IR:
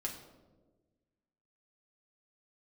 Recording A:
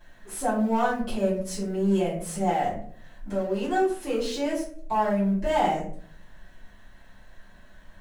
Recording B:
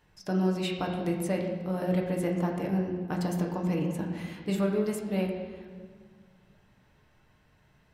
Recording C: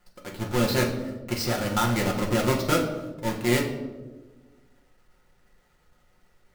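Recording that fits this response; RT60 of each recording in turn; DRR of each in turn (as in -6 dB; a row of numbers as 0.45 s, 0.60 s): C; 0.55 s, 1.7 s, 1.3 s; -11.0 dB, -0.5 dB, -1.5 dB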